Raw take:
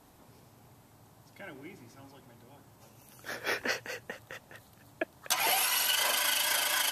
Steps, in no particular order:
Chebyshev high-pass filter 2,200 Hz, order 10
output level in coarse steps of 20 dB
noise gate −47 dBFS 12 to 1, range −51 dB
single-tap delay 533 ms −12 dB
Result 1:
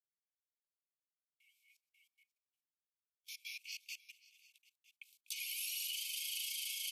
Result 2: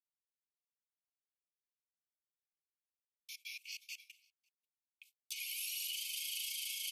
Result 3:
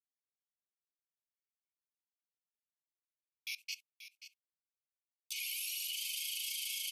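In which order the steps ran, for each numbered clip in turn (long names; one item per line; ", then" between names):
noise gate, then single-tap delay, then output level in coarse steps, then Chebyshev high-pass filter
output level in coarse steps, then single-tap delay, then noise gate, then Chebyshev high-pass filter
Chebyshev high-pass filter, then output level in coarse steps, then noise gate, then single-tap delay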